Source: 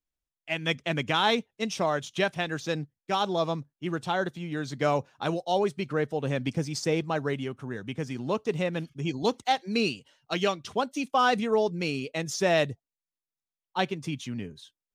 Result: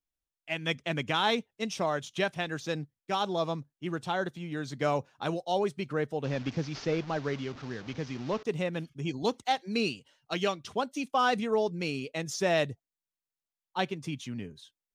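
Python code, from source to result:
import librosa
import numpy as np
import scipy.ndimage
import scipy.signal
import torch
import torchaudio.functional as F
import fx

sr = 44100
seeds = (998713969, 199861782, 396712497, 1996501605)

y = fx.delta_mod(x, sr, bps=32000, step_db=-37.5, at=(6.24, 8.43))
y = F.gain(torch.from_numpy(y), -3.0).numpy()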